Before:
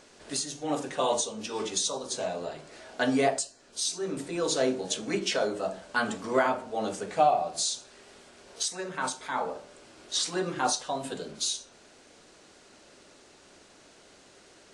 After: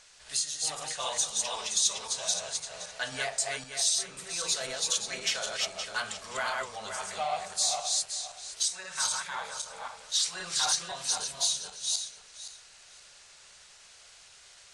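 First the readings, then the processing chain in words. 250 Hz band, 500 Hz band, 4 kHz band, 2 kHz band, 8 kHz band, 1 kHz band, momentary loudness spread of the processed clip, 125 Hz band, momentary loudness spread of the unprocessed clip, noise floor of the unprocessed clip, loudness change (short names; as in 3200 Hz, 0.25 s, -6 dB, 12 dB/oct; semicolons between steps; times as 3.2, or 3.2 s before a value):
-20.0 dB, -11.0 dB, +4.0 dB, -1.0 dB, +5.0 dB, -6.5 dB, 10 LU, -10.0 dB, 9 LU, -56 dBFS, 0.0 dB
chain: regenerating reverse delay 0.26 s, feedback 44%, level -1.5 dB; in parallel at -5 dB: soft clip -23 dBFS, distortion -11 dB; on the sum: passive tone stack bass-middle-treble 10-0-10; MP3 80 kbps 32000 Hz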